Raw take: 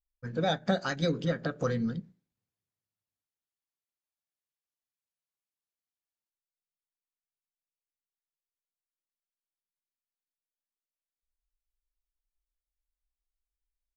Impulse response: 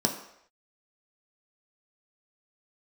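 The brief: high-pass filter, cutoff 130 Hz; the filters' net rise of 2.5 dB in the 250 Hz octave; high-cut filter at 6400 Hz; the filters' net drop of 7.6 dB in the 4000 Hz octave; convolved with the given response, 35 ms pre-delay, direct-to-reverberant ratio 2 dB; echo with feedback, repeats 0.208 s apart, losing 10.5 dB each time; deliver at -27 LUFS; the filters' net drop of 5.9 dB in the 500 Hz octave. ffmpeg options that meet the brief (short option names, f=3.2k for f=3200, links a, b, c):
-filter_complex "[0:a]highpass=130,lowpass=6.4k,equalizer=f=250:t=o:g=6,equalizer=f=500:t=o:g=-8,equalizer=f=4k:t=o:g=-8,aecho=1:1:208|416|624:0.299|0.0896|0.0269,asplit=2[a][b];[1:a]atrim=start_sample=2205,adelay=35[c];[b][c]afir=irnorm=-1:irlink=0,volume=-11.5dB[d];[a][d]amix=inputs=2:normalize=0,volume=-3dB"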